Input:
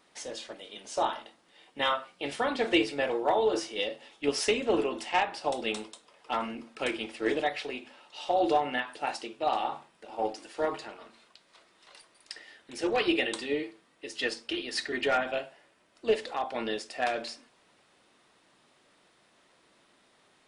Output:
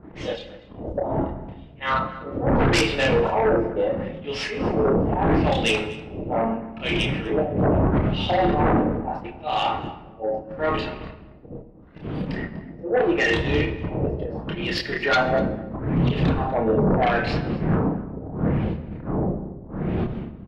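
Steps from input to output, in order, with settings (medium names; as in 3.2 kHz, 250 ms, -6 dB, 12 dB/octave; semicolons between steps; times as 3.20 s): wind noise 240 Hz -28 dBFS; gate -36 dBFS, range -21 dB; high-pass 76 Hz 6 dB/octave; treble shelf 6.2 kHz -4 dB; in parallel at 0 dB: compression, threshold -37 dBFS, peak gain reduction 25 dB; on the sum: LFO low-pass sine 0.76 Hz 540–3300 Hz; slow attack 176 ms; chorus voices 4, 0.21 Hz, delay 29 ms, depth 3 ms; sine folder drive 11 dB, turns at -10 dBFS; echo from a far wall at 42 m, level -18 dB; reverberation RT60 1.2 s, pre-delay 6 ms, DRR 9 dB; trim -5.5 dB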